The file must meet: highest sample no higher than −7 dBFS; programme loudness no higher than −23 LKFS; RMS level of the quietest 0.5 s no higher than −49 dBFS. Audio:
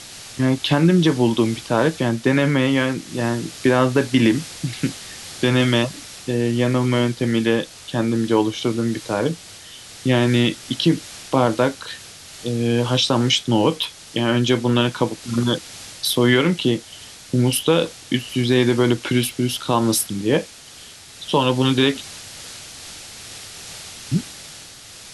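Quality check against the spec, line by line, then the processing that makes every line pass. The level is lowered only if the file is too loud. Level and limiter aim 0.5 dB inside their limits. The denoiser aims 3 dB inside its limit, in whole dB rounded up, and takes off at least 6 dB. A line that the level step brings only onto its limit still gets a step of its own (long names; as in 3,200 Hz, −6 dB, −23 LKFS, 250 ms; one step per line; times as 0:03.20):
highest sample −5.0 dBFS: out of spec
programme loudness −20.0 LKFS: out of spec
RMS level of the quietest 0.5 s −42 dBFS: out of spec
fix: broadband denoise 7 dB, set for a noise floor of −42 dBFS
level −3.5 dB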